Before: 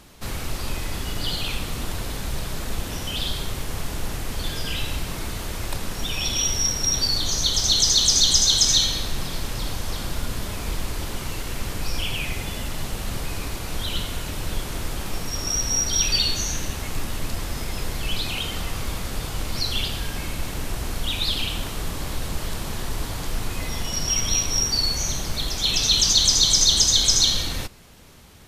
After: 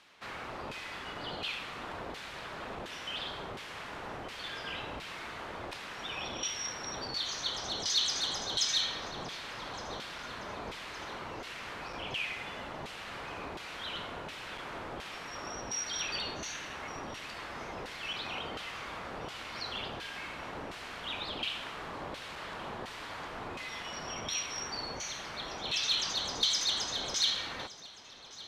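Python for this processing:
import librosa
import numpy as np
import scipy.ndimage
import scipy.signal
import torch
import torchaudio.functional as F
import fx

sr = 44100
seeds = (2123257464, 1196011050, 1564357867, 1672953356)

y = fx.high_shelf(x, sr, hz=4500.0, db=-11.5)
y = np.clip(y, -10.0 ** (-17.0 / 20.0), 10.0 ** (-17.0 / 20.0))
y = fx.filter_lfo_bandpass(y, sr, shape='saw_down', hz=1.4, low_hz=670.0, high_hz=3100.0, q=0.75)
y = fx.echo_feedback(y, sr, ms=1166, feedback_pct=53, wet_db=-19.0)
y = y * 10.0 ** (-1.5 / 20.0)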